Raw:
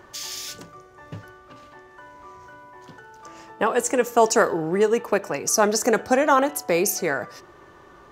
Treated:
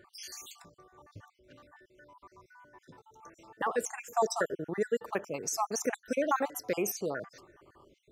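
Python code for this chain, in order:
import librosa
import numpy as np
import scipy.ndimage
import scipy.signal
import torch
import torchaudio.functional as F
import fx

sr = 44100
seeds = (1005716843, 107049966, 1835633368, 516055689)

y = fx.spec_dropout(x, sr, seeds[0], share_pct=54)
y = F.gain(torch.from_numpy(y), -8.5).numpy()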